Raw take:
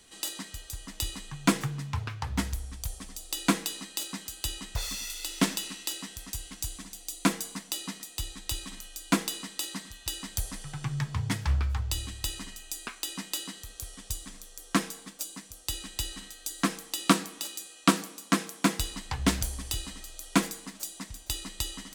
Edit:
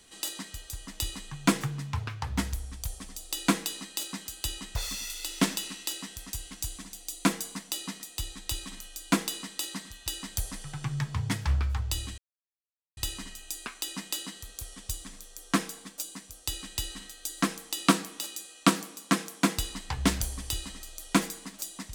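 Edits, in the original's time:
12.18 insert silence 0.79 s

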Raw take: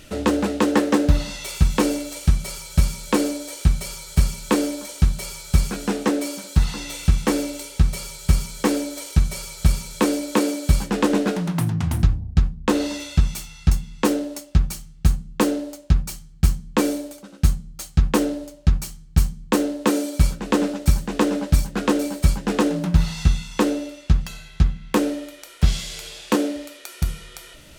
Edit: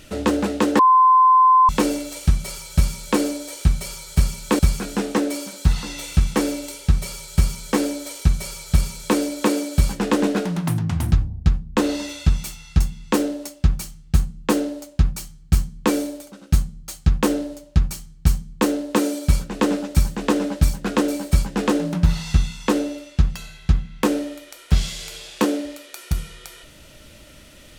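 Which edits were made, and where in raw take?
0.79–1.69 bleep 1030 Hz -9.5 dBFS
4.59–5.5 cut

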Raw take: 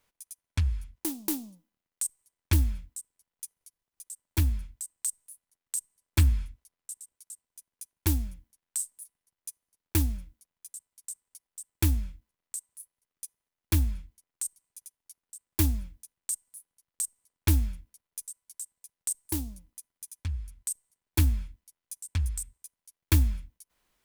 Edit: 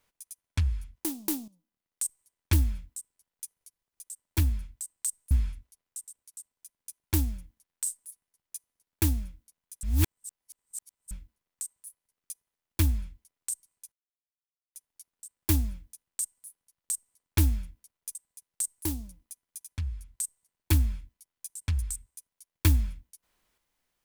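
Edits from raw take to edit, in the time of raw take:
1.48–2.04 fade in, from -14.5 dB
5.31–6.24 cut
10.76–12.04 reverse
14.85 insert silence 0.83 s
18.25–18.62 cut

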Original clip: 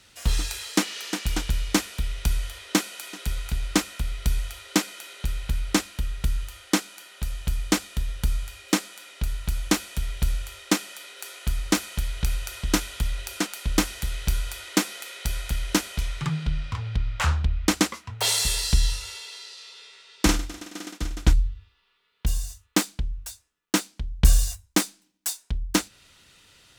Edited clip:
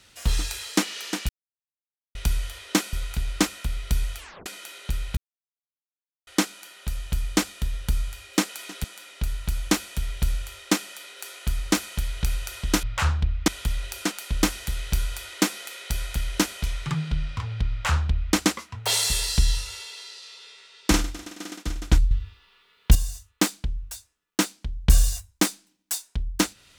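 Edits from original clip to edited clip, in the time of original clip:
1.29–2.15 mute
2.93–3.28 move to 8.84
4.53 tape stop 0.28 s
5.52–6.62 mute
17.05–17.7 copy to 12.83
21.46–22.3 gain +9.5 dB

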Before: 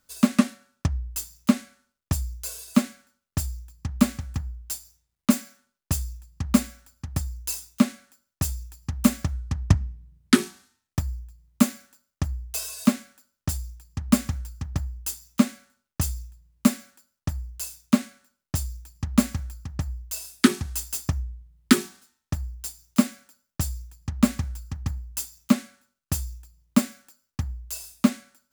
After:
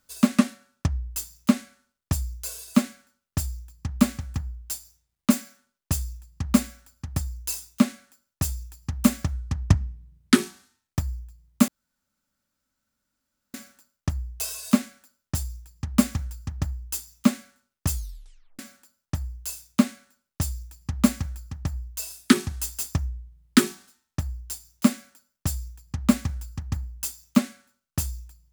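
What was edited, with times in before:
11.68 insert room tone 1.86 s
16.08 tape stop 0.65 s

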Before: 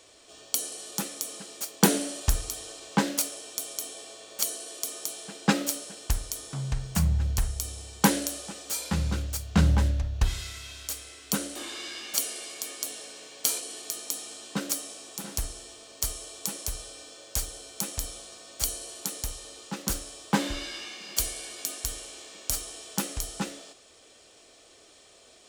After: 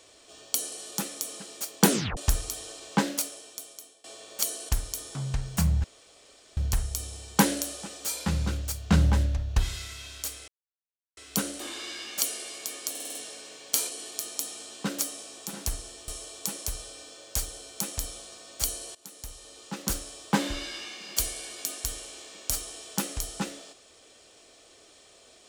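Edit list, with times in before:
1.9 tape stop 0.27 s
2.94–4.04 fade out, to -23 dB
4.69–6.07 cut
7.22 insert room tone 0.73 s
11.13 insert silence 0.69 s
12.86 stutter 0.05 s, 6 plays
15.79–16.08 cut
18.95–19.87 fade in, from -19 dB

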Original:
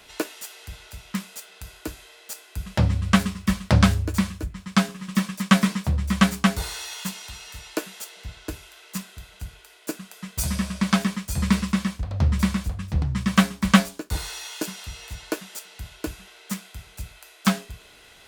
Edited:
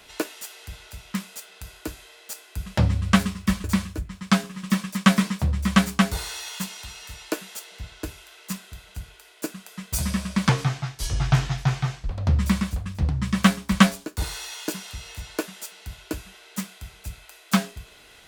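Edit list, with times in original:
3.64–4.09 cut
10.94–12.04 speed 68%

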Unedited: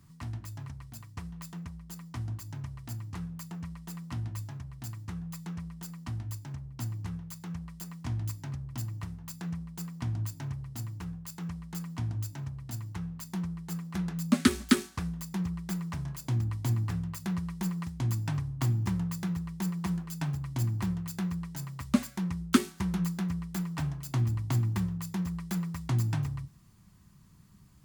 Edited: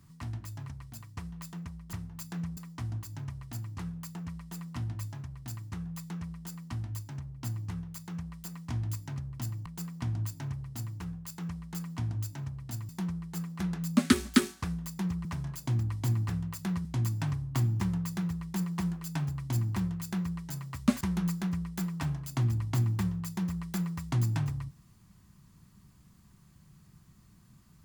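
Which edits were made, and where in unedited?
9.02–9.66 move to 1.93
12.89–13.24 cut
15.6–15.86 cut
17.46–17.91 cut
22.07–22.78 cut

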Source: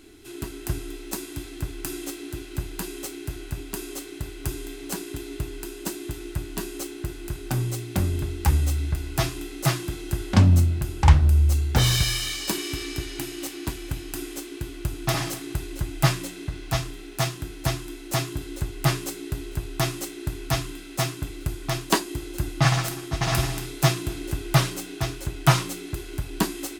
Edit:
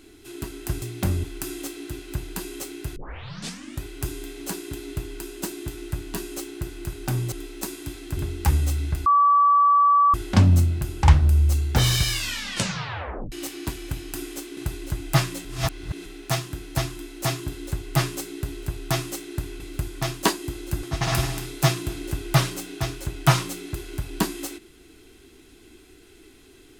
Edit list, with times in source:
0.82–1.67 swap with 7.75–8.17
3.39 tape start 0.88 s
9.06–10.14 bleep 1150 Hz -13.5 dBFS
12.1 tape stop 1.22 s
14.57–15.46 cut
16.34–16.95 reverse
20.49–21.27 cut
22.5–23.03 cut

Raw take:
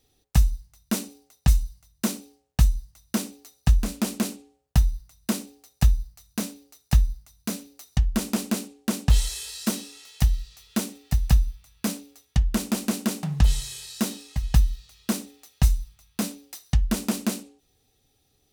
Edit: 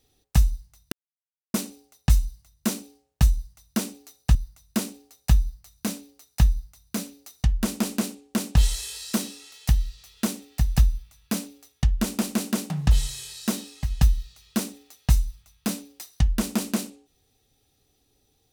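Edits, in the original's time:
0.92 insert silence 0.62 s
3.73–4.88 cut

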